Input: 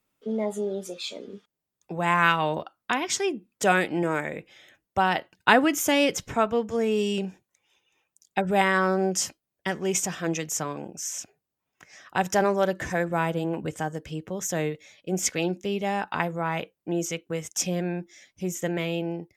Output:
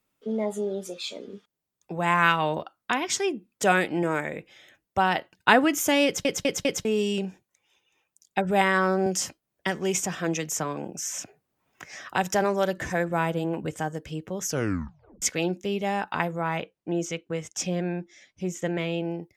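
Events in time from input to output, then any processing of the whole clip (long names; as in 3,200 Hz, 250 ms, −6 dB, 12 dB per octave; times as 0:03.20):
0:06.05: stutter in place 0.20 s, 4 plays
0:09.06–0:12.78: multiband upward and downward compressor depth 40%
0:14.43: tape stop 0.79 s
0:16.57–0:19.05: high-frequency loss of the air 54 metres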